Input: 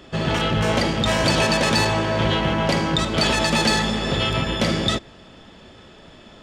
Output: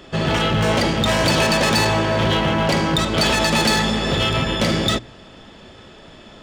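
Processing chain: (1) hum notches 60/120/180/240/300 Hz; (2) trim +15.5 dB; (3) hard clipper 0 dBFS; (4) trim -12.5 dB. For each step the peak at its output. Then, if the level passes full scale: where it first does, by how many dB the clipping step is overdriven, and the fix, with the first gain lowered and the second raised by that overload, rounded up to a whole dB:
-8.0 dBFS, +7.5 dBFS, 0.0 dBFS, -12.5 dBFS; step 2, 7.5 dB; step 2 +7.5 dB, step 4 -4.5 dB

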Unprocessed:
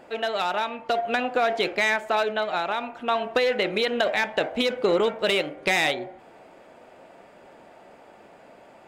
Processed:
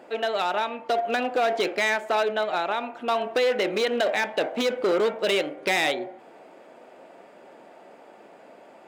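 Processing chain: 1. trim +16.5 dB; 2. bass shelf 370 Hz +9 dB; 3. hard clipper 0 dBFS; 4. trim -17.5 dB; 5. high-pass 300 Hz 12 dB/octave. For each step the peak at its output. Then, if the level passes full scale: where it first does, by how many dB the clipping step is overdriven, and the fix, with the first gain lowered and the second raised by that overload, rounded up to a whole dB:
+3.0 dBFS, +9.0 dBFS, 0.0 dBFS, -17.5 dBFS, -12.0 dBFS; step 1, 9.0 dB; step 1 +7.5 dB, step 4 -8.5 dB

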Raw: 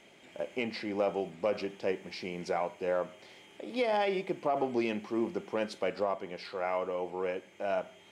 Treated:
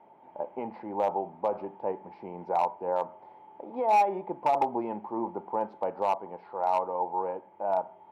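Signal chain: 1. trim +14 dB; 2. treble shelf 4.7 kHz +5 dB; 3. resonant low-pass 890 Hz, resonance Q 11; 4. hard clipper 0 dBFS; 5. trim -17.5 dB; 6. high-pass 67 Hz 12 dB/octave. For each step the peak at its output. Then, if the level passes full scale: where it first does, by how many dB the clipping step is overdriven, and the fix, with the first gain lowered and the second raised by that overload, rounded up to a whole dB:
-6.5 dBFS, -6.0 dBFS, +5.5 dBFS, 0.0 dBFS, -17.5 dBFS, -16.0 dBFS; step 3, 5.5 dB; step 1 +8 dB, step 5 -11.5 dB

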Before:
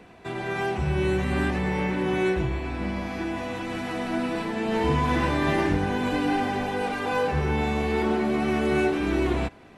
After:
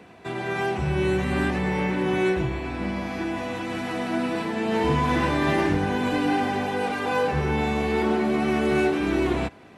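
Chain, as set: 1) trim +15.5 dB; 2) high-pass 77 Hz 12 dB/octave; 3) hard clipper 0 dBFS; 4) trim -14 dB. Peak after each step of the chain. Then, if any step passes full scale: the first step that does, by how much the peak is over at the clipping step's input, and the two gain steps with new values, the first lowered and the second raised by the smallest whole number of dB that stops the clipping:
+3.0 dBFS, +3.5 dBFS, 0.0 dBFS, -14.0 dBFS; step 1, 3.5 dB; step 1 +11.5 dB, step 4 -10 dB

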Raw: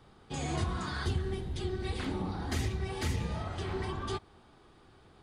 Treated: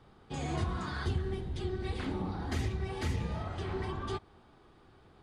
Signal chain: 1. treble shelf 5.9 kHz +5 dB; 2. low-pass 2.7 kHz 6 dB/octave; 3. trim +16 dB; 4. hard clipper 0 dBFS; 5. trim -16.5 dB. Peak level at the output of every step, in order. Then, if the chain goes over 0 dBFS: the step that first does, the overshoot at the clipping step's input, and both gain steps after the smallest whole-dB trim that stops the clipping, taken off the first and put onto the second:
-20.0 dBFS, -20.5 dBFS, -4.5 dBFS, -4.5 dBFS, -21.0 dBFS; nothing clips

